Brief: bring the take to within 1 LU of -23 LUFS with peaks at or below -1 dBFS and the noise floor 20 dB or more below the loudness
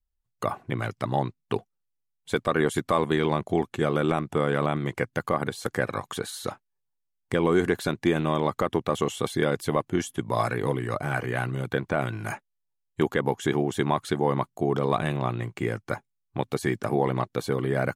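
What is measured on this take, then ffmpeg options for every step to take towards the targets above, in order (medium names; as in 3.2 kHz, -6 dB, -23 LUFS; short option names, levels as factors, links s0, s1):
loudness -27.5 LUFS; peak level -10.0 dBFS; loudness target -23.0 LUFS
-> -af "volume=1.68"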